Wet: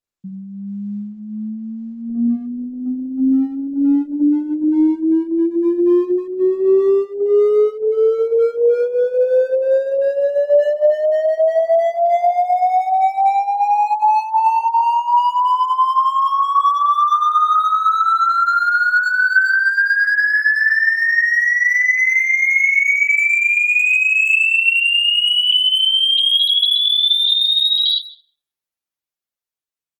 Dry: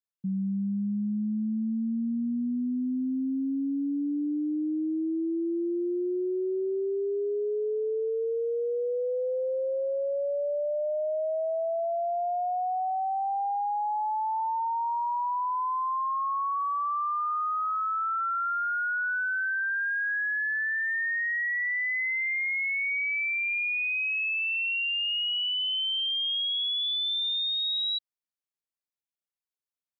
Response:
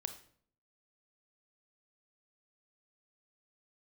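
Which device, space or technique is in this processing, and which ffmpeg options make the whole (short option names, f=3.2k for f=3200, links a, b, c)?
speakerphone in a meeting room: -filter_complex "[0:a]asettb=1/sr,asplit=3[a][b][c];[a]atrim=end=16.254[d];[b]atrim=start=16.25:end=16.95,asetpts=PTS-STARTPTS,afade=t=in:d=0.004:c=qsin,afade=t=out:st=0.696:d=0.004:c=qsin,lowshelf=f=190:g=-6[e];[c]atrim=start=16.946[f];[d][e]acrossfade=d=0.004:c1=hsin:c2=qsin[g];[g][f]acrossfade=d=0.004:c1=qsin:c2=hsin[h];[1:a]atrim=start_sample=2205[i];[h][i]afir=irnorm=-1:irlink=0,asplit=2[j][k];[k]adelay=100,highpass=300,lowpass=3.4k,asoftclip=type=hard:threshold=-31.5dB,volume=-7dB[l];[j][l]amix=inputs=2:normalize=0,dynaudnorm=f=750:g=7:m=6.5dB,agate=range=-6dB:threshold=-26dB:ratio=16:detection=peak,volume=8.5dB" -ar 48000 -c:a libopus -b:a 16k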